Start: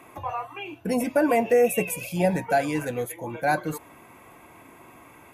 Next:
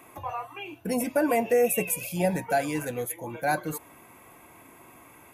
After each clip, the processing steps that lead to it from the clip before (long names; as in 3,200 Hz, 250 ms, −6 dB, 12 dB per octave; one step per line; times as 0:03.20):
high-shelf EQ 8,000 Hz +9.5 dB
level −3 dB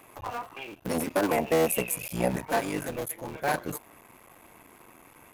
sub-harmonics by changed cycles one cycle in 3, muted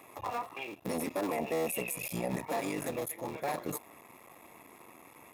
brickwall limiter −23.5 dBFS, peak gain reduction 9.5 dB
notch comb filter 1,500 Hz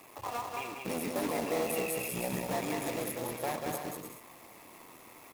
log-companded quantiser 4 bits
bouncing-ball delay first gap 190 ms, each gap 0.6×, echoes 5
level −2 dB